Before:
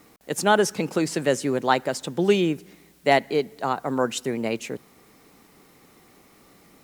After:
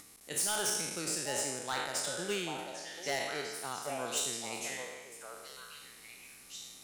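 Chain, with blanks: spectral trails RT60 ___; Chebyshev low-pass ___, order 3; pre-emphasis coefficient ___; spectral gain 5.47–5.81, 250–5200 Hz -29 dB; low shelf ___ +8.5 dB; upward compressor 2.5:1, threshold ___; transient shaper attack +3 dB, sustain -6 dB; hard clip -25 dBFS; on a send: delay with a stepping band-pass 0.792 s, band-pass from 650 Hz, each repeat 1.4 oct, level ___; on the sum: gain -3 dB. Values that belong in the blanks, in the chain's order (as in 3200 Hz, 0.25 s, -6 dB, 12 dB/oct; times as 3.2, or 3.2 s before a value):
1.29 s, 11000 Hz, 0.9, 140 Hz, -44 dBFS, -2 dB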